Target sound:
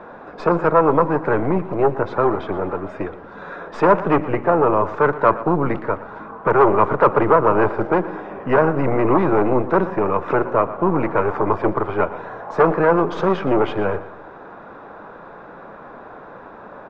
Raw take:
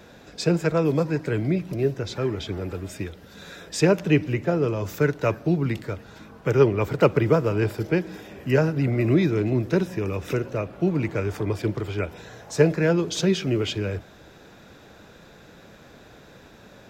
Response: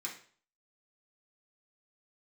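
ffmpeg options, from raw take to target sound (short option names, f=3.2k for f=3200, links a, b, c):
-filter_complex "[0:a]aeval=exprs='0.708*(cos(1*acos(clip(val(0)/0.708,-1,1)))-cos(1*PI/2))+0.0708*(cos(8*acos(clip(val(0)/0.708,-1,1)))-cos(8*PI/2))':c=same,apsyclip=17dB,lowpass=f=1.1k:t=q:w=2.6,equalizer=f=74:w=0.49:g=-15,asplit=2[a][b];[b]aecho=0:1:118|236|354:0.158|0.0602|0.0229[c];[a][c]amix=inputs=2:normalize=0,volume=-6.5dB"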